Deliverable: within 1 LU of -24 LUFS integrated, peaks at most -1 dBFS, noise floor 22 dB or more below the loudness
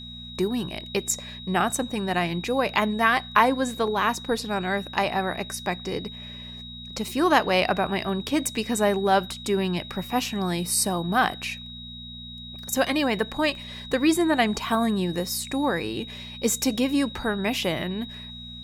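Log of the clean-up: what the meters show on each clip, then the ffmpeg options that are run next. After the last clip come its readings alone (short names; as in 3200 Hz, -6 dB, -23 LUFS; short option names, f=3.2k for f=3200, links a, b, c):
hum 60 Hz; harmonics up to 240 Hz; hum level -40 dBFS; steady tone 3800 Hz; tone level -39 dBFS; loudness -25.0 LUFS; peak -4.5 dBFS; loudness target -24.0 LUFS
-> -af "bandreject=f=60:t=h:w=4,bandreject=f=120:t=h:w=4,bandreject=f=180:t=h:w=4,bandreject=f=240:t=h:w=4"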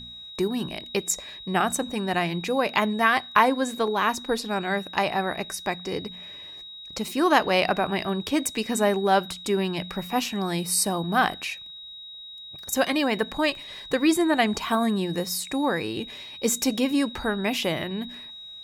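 hum none; steady tone 3800 Hz; tone level -39 dBFS
-> -af "bandreject=f=3.8k:w=30"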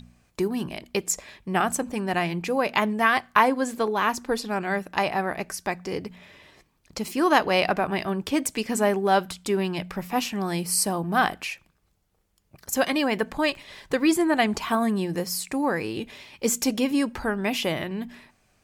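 steady tone none; loudness -25.5 LUFS; peak -4.0 dBFS; loudness target -24.0 LUFS
-> -af "volume=1.5dB"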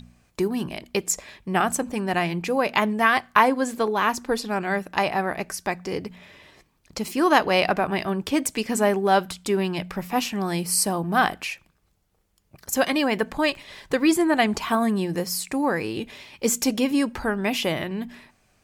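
loudness -24.0 LUFS; peak -2.5 dBFS; noise floor -66 dBFS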